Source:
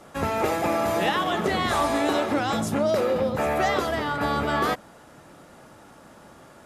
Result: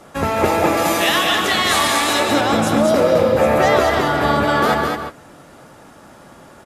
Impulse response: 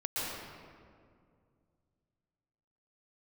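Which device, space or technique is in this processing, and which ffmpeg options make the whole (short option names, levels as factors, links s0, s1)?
keyed gated reverb: -filter_complex "[0:a]asettb=1/sr,asplit=3[s0][s1][s2];[s0]atrim=end=0.774[s3];[s1]atrim=start=0.77:end=2.2,asetpts=PTS-STARTPTS,afade=t=in:d=0.004:c=qsin,afade=t=out:st=1.426:d=0.004:c=qsin,tiltshelf=f=1400:g=-8.5[s4];[s2]atrim=start=2.196[s5];[s3][s4]acrossfade=d=0.004:c1=hsin:c2=qsin[s6];[s6][s5]acrossfade=d=0.004:c1=qsin:c2=hsin,asplit=3[s7][s8][s9];[1:a]atrim=start_sample=2205[s10];[s8][s10]afir=irnorm=-1:irlink=0[s11];[s9]apad=whole_len=293452[s12];[s11][s12]sidechaingate=range=0.0224:threshold=0.01:ratio=16:detection=peak,volume=0.335[s13];[s7][s13]amix=inputs=2:normalize=0,aecho=1:1:211:0.596,volume=1.68"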